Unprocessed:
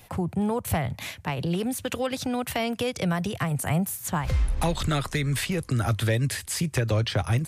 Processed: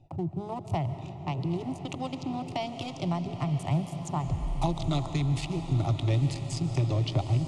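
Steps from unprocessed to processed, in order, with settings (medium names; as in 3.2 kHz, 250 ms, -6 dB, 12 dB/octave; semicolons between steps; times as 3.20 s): local Wiener filter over 41 samples; low-pass 7.4 kHz 24 dB/octave; reverse; upward compressor, threshold -32 dBFS; reverse; static phaser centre 320 Hz, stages 8; on a send: echo that smears into a reverb 950 ms, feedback 56%, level -11 dB; on the sum: algorithmic reverb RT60 3.1 s, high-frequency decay 0.8×, pre-delay 100 ms, DRR 10 dB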